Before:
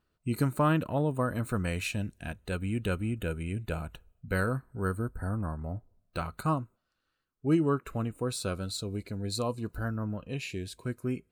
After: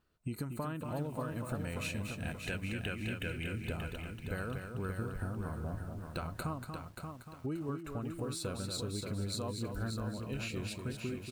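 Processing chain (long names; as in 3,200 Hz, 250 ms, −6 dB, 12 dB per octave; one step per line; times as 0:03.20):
0:02.43–0:03.49: flat-topped bell 2,200 Hz +10 dB 1.2 octaves
downward compressor 12 to 1, threshold −35 dBFS, peak gain reduction 16 dB
single-tap delay 236 ms −6.5 dB
feedback echo at a low word length 581 ms, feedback 35%, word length 10 bits, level −6 dB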